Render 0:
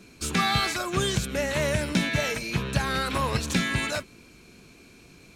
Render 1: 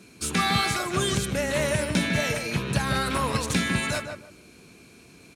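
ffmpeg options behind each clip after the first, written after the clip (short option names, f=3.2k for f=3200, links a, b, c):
-filter_complex "[0:a]highpass=74,equalizer=f=9.6k:w=2.8:g=6.5,asplit=2[a][b];[b]adelay=152,lowpass=f=1.6k:p=1,volume=-4.5dB,asplit=2[c][d];[d]adelay=152,lowpass=f=1.6k:p=1,volume=0.23,asplit=2[e][f];[f]adelay=152,lowpass=f=1.6k:p=1,volume=0.23[g];[c][e][g]amix=inputs=3:normalize=0[h];[a][h]amix=inputs=2:normalize=0"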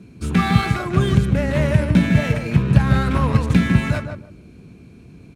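-filter_complex "[0:a]bass=f=250:g=12,treble=f=4k:g=-9,asplit=2[a][b];[b]adynamicsmooth=sensitivity=7.5:basefreq=630,volume=-2dB[c];[a][c]amix=inputs=2:normalize=0,volume=-2.5dB"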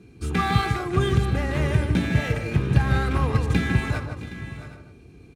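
-af "aecho=1:1:2.5:0.5,aecho=1:1:665|685|768:0.133|0.141|0.133,volume=-4.5dB"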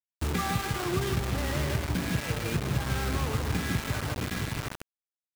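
-af "acompressor=threshold=-31dB:ratio=4,lowpass=f=3.3k:p=1,acrusher=bits=5:mix=0:aa=0.000001,volume=3dB"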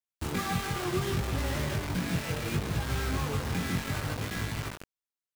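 -af "flanger=delay=18:depth=4.7:speed=0.68,volume=1.5dB"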